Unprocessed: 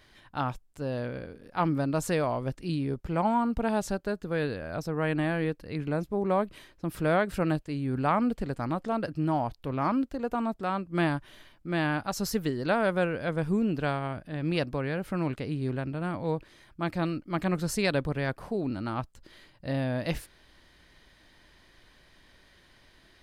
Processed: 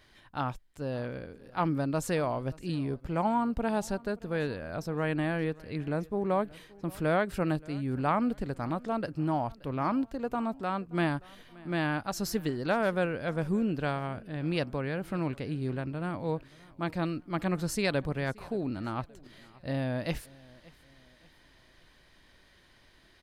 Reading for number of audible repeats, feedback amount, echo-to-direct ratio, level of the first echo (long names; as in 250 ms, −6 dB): 2, 41%, −22.0 dB, −23.0 dB